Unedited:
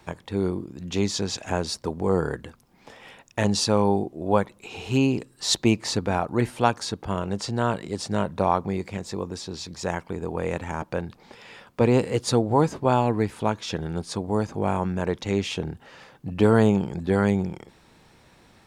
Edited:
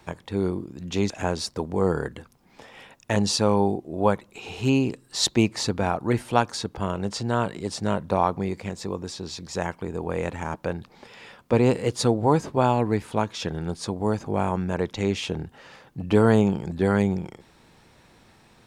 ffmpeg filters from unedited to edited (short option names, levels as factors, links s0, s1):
-filter_complex "[0:a]asplit=2[s0][s1];[s0]atrim=end=1.102[s2];[s1]atrim=start=1.378[s3];[s2][s3]acrossfade=d=0.004:c1=hsin:c2=hsin"